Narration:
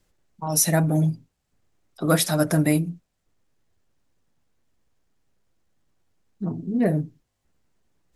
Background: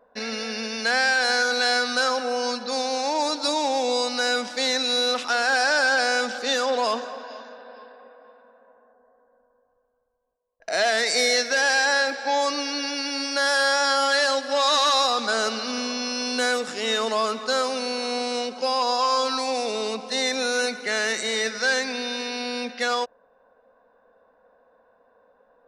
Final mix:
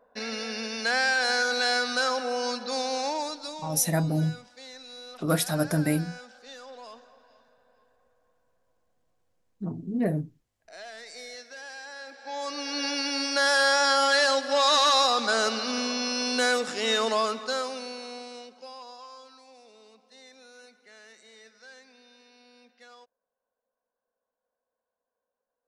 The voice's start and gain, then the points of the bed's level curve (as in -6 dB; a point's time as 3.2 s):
3.20 s, -5.0 dB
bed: 3.05 s -3.5 dB
3.83 s -21.5 dB
11.95 s -21.5 dB
12.85 s -1 dB
17.12 s -1 dB
19.35 s -27.5 dB